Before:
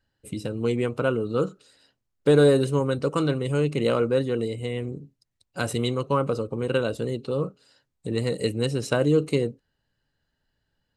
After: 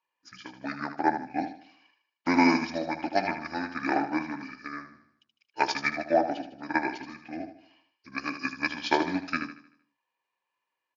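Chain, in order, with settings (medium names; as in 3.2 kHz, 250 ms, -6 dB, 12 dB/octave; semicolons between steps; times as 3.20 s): pitch shift -9 st; band-pass 630–6400 Hz; on a send: feedback delay 77 ms, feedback 48%, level -7 dB; on the sum: upward expansion 1.5:1, over -48 dBFS; trim +8.5 dB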